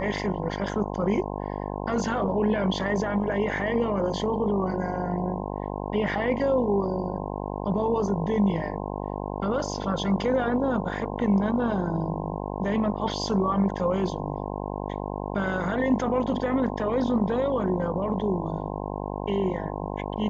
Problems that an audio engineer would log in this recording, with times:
mains buzz 50 Hz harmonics 21 −32 dBFS

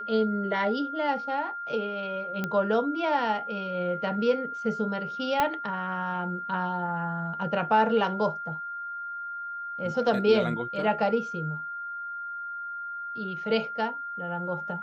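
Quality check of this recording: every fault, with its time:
whistle 1,400 Hz −33 dBFS
0:02.44: click −16 dBFS
0:05.40: click −10 dBFS

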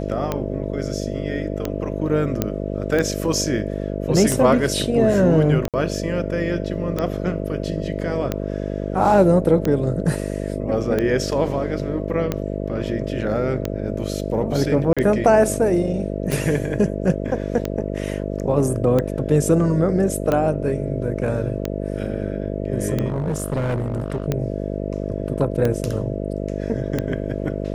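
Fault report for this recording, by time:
mains buzz 50 Hz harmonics 13 −26 dBFS
scratch tick 45 rpm −9 dBFS
0:02.42: click −6 dBFS
0:05.68–0:05.74: drop-out 57 ms
0:14.93–0:14.97: drop-out 36 ms
0:23.08–0:24.26: clipping −18.5 dBFS

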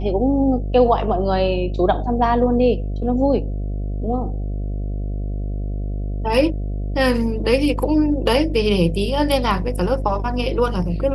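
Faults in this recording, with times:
mains buzz 50 Hz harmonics 14 −24 dBFS

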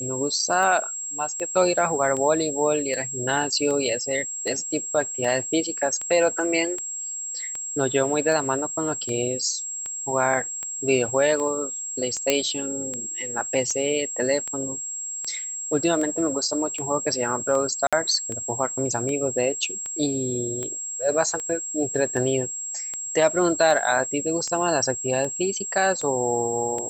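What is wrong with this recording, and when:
scratch tick 78 rpm −18 dBFS
whistle 7,600 Hz −29 dBFS
0:12.30: click −3 dBFS
0:17.87–0:17.93: drop-out 56 ms

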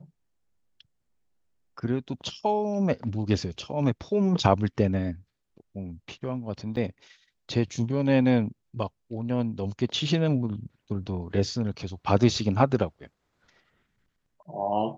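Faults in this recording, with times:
0:06.76–0:06.77: drop-out 7.9 ms

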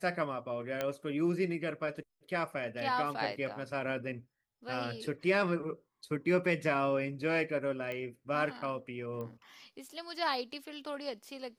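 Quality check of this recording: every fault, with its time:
0:00.81: click −19 dBFS
0:07.92: click −26 dBFS
0:09.21: click −30 dBFS

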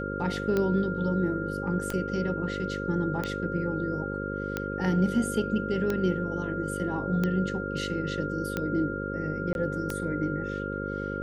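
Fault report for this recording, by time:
mains buzz 50 Hz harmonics 11 −34 dBFS
scratch tick 45 rpm −15 dBFS
whistle 1,400 Hz −35 dBFS
0:01.92: drop-out 4.4 ms
0:09.53–0:09.55: drop-out 21 ms

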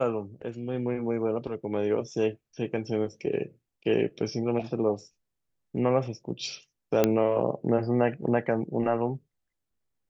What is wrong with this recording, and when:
0:07.04: click −8 dBFS

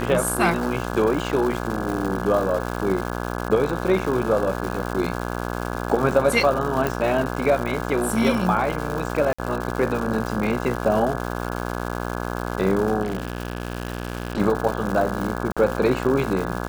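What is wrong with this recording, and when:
mains buzz 60 Hz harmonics 28 −28 dBFS
surface crackle 310 per second −27 dBFS
0:06.87: click
0:09.33–0:09.38: drop-out 55 ms
0:13.03–0:14.41: clipping −21 dBFS
0:15.52–0:15.57: drop-out 46 ms

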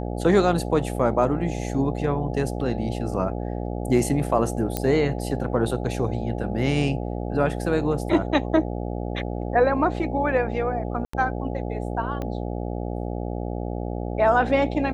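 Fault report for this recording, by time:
mains buzz 60 Hz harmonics 14 −29 dBFS
0:04.77: click −9 dBFS
0:11.05–0:11.13: drop-out 84 ms
0:12.22: click −18 dBFS

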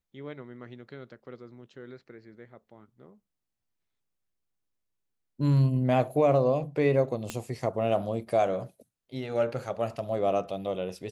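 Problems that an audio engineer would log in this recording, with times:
0:07.30: click −17 dBFS

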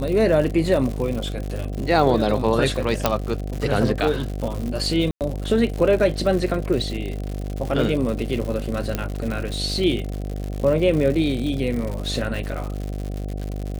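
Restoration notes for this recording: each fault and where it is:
mains buzz 50 Hz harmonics 15 −28 dBFS
surface crackle 130 per second −27 dBFS
0:03.06: click −2 dBFS
0:05.11–0:05.21: drop-out 98 ms
0:08.95: click −9 dBFS

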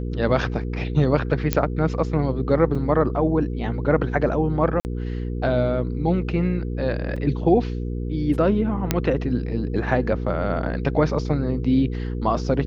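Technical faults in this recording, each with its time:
mains hum 60 Hz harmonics 8 −27 dBFS
0:01.53: click −4 dBFS
0:02.75: drop-out 4.1 ms
0:04.80–0:04.85: drop-out 49 ms
0:07.16: drop-out 4.5 ms
0:08.91: click −4 dBFS

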